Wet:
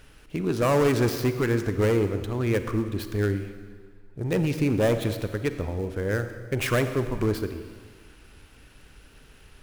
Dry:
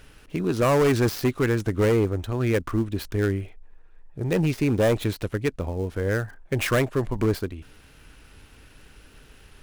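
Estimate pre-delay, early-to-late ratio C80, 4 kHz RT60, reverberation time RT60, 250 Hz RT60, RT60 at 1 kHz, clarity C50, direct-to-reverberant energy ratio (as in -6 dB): 34 ms, 10.5 dB, 1.6 s, 1.8 s, 1.7 s, 1.8 s, 9.5 dB, 9.0 dB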